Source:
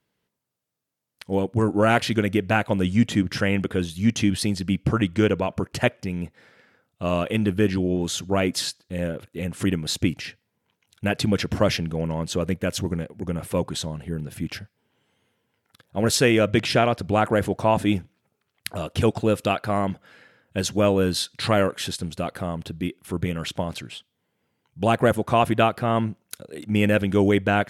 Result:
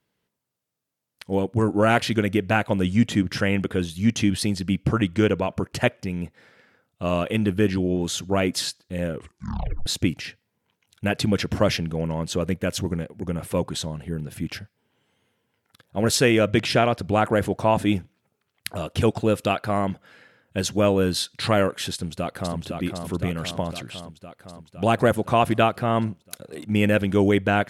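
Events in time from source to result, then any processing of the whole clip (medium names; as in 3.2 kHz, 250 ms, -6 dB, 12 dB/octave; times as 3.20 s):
9.09 s: tape stop 0.77 s
21.93–22.57 s: echo throw 510 ms, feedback 70%, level -5 dB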